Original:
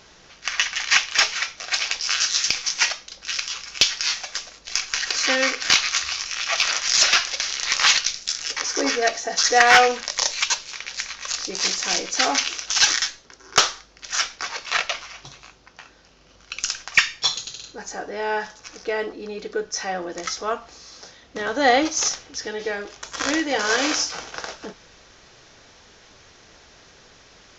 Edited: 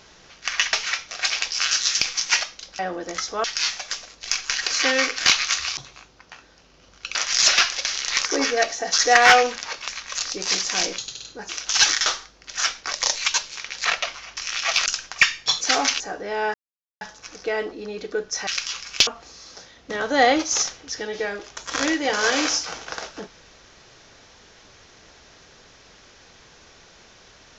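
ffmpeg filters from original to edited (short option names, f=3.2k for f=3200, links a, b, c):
-filter_complex "[0:a]asplit=21[a][b][c][d][e][f][g][h][i][j][k][l][m][n][o][p][q][r][s][t][u];[a]atrim=end=0.732[v];[b]atrim=start=1.218:end=3.282[w];[c]atrim=start=19.878:end=20.532[x];[d]atrim=start=3.878:end=6.212[y];[e]atrim=start=15.238:end=16.622[z];[f]atrim=start=6.698:end=7.802[aa];[g]atrim=start=8.698:end=10.082[ab];[h]atrim=start=14.468:end=14.722[ac];[i]atrim=start=11.008:end=12.112[ad];[j]atrim=start=17.368:end=17.882[ae];[k]atrim=start=12.498:end=13.072[af];[l]atrim=start=13.608:end=14.472[ag];[m]atrim=start=10.078:end=11.012[ah];[n]atrim=start=14.718:end=15.242[ai];[o]atrim=start=6.208:end=6.702[aj];[p]atrim=start=16.618:end=17.372[ak];[q]atrim=start=12.108:end=12.502[al];[r]atrim=start=17.878:end=18.42,asetpts=PTS-STARTPTS,afade=t=out:st=0.538:d=0.004:c=hsin,apad=pad_dur=0.47[am];[s]atrim=start=18.42:end=19.882,asetpts=PTS-STARTPTS,afade=t=in:d=0.004:c=hsin[an];[t]atrim=start=3.278:end=3.882[ao];[u]atrim=start=20.528[ap];[v][w]acrossfade=d=0.004:c1=hsin:c2=hsin[aq];[aq][x]acrossfade=d=0.004:c1=hsin:c2=hsin[ar];[ar][y]acrossfade=d=0.004:c1=hsin:c2=hsin[as];[as][z]acrossfade=d=0.004:c1=hsin:c2=hsin[at];[at][aa]acrossfade=d=0.004:c1=hsin:c2=hsin[au];[au][ab]acrossfade=d=0.004:c1=hsin:c2=hsin[av];[av][ac]acrossfade=d=0.004:c1=hsin:c2=hsin[aw];[aw][ad]acrossfade=d=0.004:c1=hsin:c2=hsin[ax];[ax][ae]acrossfade=d=0.004:c1=hsin:c2=hsin[ay];[ay][af]acrossfade=d=0.004:c1=hsin:c2=hsin[az];[az][ag]acrossfade=d=0.004:c1=hsin:c2=hsin[ba];[ba][ah]acrossfade=d=0.004:c1=hsin:c2=hsin[bb];[bb][ai]acrossfade=d=0.004:c1=hsin:c2=hsin[bc];[bc][aj]acrossfade=d=0.004:c1=hsin:c2=hsin[bd];[bd][ak]acrossfade=d=0.004:c1=hsin:c2=hsin[be];[be][al]acrossfade=d=0.004:c1=hsin:c2=hsin[bf];[am][an]concat=n=2:v=0:a=1[bg];[bf][bg]acrossfade=d=0.004:c1=hsin:c2=hsin[bh];[bh][ao]acrossfade=d=0.004:c1=hsin:c2=hsin[bi];[bi][ap]acrossfade=d=0.004:c1=hsin:c2=hsin"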